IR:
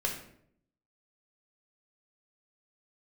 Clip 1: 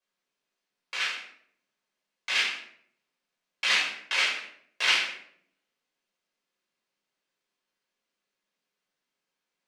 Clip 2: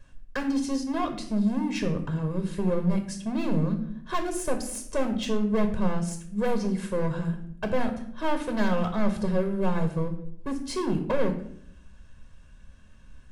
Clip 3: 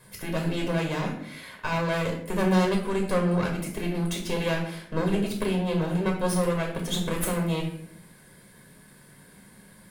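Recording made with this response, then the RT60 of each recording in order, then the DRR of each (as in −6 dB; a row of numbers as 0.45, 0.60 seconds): 3; 0.65, 0.65, 0.65 seconds; −5.5, 5.5, 0.5 decibels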